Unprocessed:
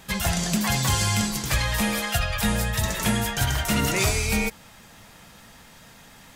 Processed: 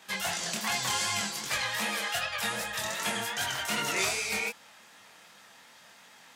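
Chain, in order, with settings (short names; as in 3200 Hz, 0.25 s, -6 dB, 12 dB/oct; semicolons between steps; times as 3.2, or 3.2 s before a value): weighting filter A; chorus 2.6 Hz, delay 20 ms, depth 6.5 ms; gain -1.5 dB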